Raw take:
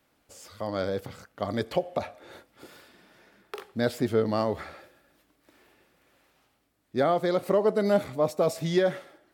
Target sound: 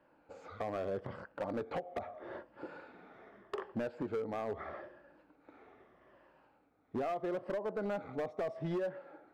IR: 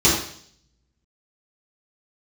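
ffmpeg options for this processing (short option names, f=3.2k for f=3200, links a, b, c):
-af "afftfilt=real='re*pow(10,8/40*sin(2*PI*(1.3*log(max(b,1)*sr/1024/100)/log(2)-(-0.79)*(pts-256)/sr)))':imag='im*pow(10,8/40*sin(2*PI*(1.3*log(max(b,1)*sr/1024/100)/log(2)-(-0.79)*(pts-256)/sr)))':win_size=1024:overlap=0.75,lowpass=1.2k,lowshelf=f=240:g=-10,acompressor=threshold=-37dB:ratio=12,asoftclip=type=hard:threshold=-37dB,volume=5.5dB"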